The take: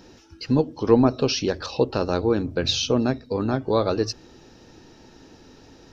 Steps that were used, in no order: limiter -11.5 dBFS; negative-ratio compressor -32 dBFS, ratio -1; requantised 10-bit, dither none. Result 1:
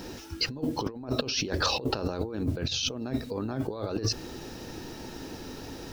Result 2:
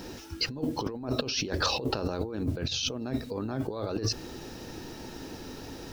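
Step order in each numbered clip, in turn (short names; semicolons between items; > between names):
requantised > negative-ratio compressor > limiter; limiter > requantised > negative-ratio compressor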